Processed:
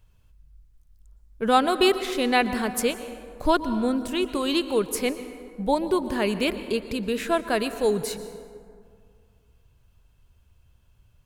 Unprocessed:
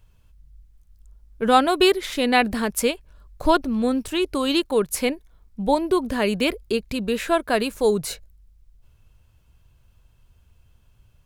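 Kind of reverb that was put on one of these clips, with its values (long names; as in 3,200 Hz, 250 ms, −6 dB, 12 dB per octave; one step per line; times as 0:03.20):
dense smooth reverb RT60 2.2 s, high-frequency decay 0.45×, pre-delay 105 ms, DRR 11.5 dB
level −3 dB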